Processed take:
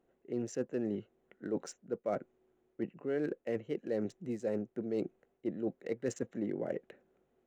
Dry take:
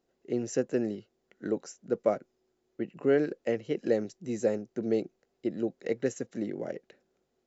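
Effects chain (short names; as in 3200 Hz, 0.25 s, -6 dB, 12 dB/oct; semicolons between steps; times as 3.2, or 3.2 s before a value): Wiener smoothing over 9 samples; reverse; compressor 6:1, threshold -35 dBFS, peak gain reduction 14.5 dB; reverse; gain +3 dB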